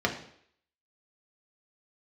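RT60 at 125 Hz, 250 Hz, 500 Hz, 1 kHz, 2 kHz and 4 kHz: 0.55, 0.60, 0.65, 0.65, 0.65, 0.65 seconds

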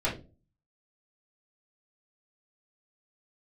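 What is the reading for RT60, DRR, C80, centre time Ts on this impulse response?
0.30 s, −8.0 dB, 14.0 dB, 24 ms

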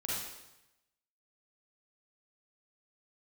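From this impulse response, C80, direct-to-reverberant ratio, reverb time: 1.5 dB, −6.5 dB, 0.95 s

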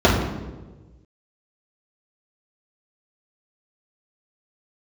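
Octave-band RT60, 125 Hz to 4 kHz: 1.7, 1.4, 1.4, 1.1, 0.90, 0.80 seconds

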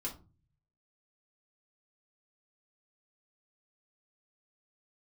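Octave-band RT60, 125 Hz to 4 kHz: 1.0, 0.55, 0.35, 0.30, 0.25, 0.20 seconds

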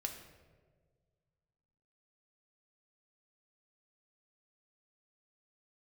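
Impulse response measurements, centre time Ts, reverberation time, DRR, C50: 26 ms, 1.6 s, 3.0 dB, 7.5 dB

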